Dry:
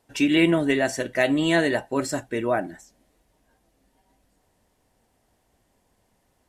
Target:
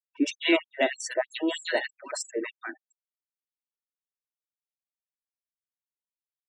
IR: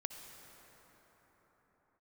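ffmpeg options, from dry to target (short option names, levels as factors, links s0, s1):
-filter_complex "[0:a]afftfilt=real='re*gte(hypot(re,im),0.0251)':imag='im*gte(hypot(re,im),0.0251)':win_size=1024:overlap=0.75,acrossover=split=1400[s0][s1];[s1]adelay=110[s2];[s0][s2]amix=inputs=2:normalize=0,afftfilt=real='re*gte(b*sr/1024,230*pow(6100/230,0.5+0.5*sin(2*PI*3.2*pts/sr)))':imag='im*gte(b*sr/1024,230*pow(6100/230,0.5+0.5*sin(2*PI*3.2*pts/sr)))':win_size=1024:overlap=0.75"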